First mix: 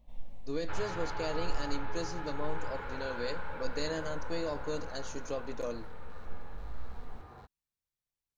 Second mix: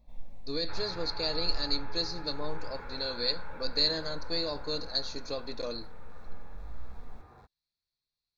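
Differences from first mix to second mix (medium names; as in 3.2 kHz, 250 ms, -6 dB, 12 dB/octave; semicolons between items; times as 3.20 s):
speech: add resonant low-pass 4.3 kHz, resonance Q 8.4; second sound -3.5 dB; master: add Butterworth band-stop 3 kHz, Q 6.6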